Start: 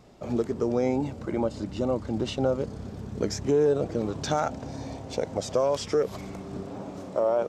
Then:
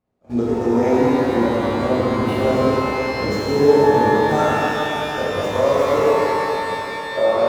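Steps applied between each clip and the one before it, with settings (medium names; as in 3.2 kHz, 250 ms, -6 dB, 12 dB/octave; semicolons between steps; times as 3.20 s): median filter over 9 samples; gate -32 dBFS, range -26 dB; pitch-shifted reverb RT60 3.6 s, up +12 st, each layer -8 dB, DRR -9 dB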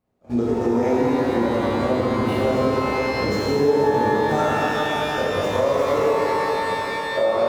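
compression 2:1, threshold -21 dBFS, peak gain reduction 7.5 dB; trim +1.5 dB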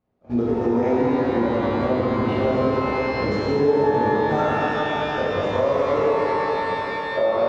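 distance through air 160 m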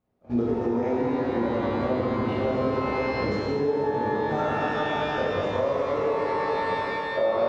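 gain riding within 3 dB 0.5 s; trim -4.5 dB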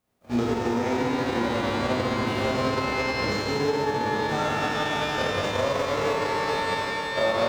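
formants flattened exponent 0.6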